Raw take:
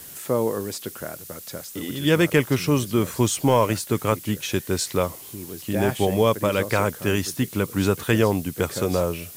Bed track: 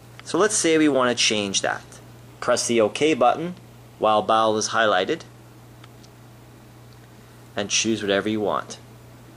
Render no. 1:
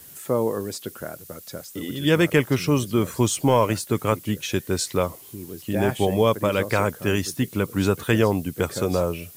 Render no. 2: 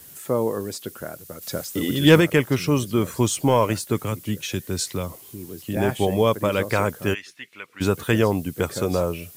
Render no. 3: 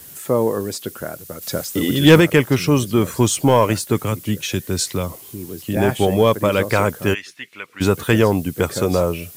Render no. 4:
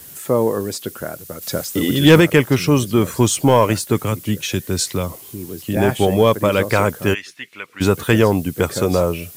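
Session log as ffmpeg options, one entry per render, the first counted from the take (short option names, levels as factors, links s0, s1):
-af "afftdn=nr=6:nf=-41"
-filter_complex "[0:a]asplit=3[s0][s1][s2];[s0]afade=t=out:st=1.41:d=0.02[s3];[s1]acontrast=76,afade=t=in:st=1.41:d=0.02,afade=t=out:st=2.19:d=0.02[s4];[s2]afade=t=in:st=2.19:d=0.02[s5];[s3][s4][s5]amix=inputs=3:normalize=0,asettb=1/sr,asplit=3[s6][s7][s8];[s6]atrim=end=4.044[s9];[s7]atrim=start=4.04:end=5.77,asetpts=PTS-STARTPTS,afade=t=in:d=0.004:c=qsin,afade=t=out:st=1.726:d=0.004:c=qsin,acrossover=split=240|3000[s10][s11][s12];[s11]acompressor=threshold=0.0282:ratio=2.5:attack=3.2:release=140:knee=2.83:detection=peak[s13];[s10][s13][s12]amix=inputs=3:normalize=0[s14];[s8]atrim=start=5.766[s15];[s9][s14]acrossfade=d=0.004:c1=hsin:c2=qsin[s16];[s16][s15]acrossfade=d=0.004:c1=qsin:c2=hsin,asplit=3[s17][s18][s19];[s17]afade=t=out:st=7.13:d=0.02[s20];[s18]bandpass=f=2200:t=q:w=2.2,afade=t=in:st=7.13:d=0.02,afade=t=out:st=7.8:d=0.02[s21];[s19]afade=t=in:st=7.8:d=0.02[s22];[s20][s21][s22]amix=inputs=3:normalize=0"
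-af "acontrast=26"
-af "volume=1.12,alimiter=limit=0.794:level=0:latency=1"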